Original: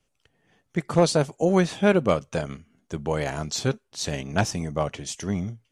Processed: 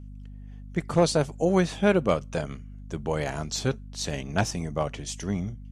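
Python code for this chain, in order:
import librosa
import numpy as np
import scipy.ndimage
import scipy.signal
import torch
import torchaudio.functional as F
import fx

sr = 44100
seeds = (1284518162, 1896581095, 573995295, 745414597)

y = fx.add_hum(x, sr, base_hz=50, snr_db=14)
y = y * 10.0 ** (-2.0 / 20.0)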